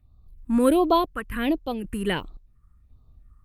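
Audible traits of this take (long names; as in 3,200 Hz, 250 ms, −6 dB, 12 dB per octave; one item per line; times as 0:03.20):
phaser sweep stages 4, 1.4 Hz, lowest notch 630–1,800 Hz
sample-and-hold tremolo 3.8 Hz, depth 65%
Opus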